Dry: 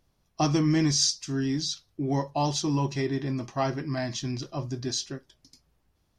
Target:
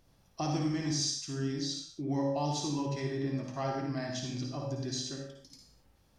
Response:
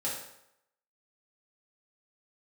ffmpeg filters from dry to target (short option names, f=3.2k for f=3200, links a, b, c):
-filter_complex "[0:a]acompressor=threshold=-59dB:ratio=1.5,asplit=2[a][b];[1:a]atrim=start_sample=2205,afade=t=out:st=0.28:d=0.01,atrim=end_sample=12789,adelay=54[c];[b][c]afir=irnorm=-1:irlink=0,volume=-5dB[d];[a][d]amix=inputs=2:normalize=0,volume=3dB"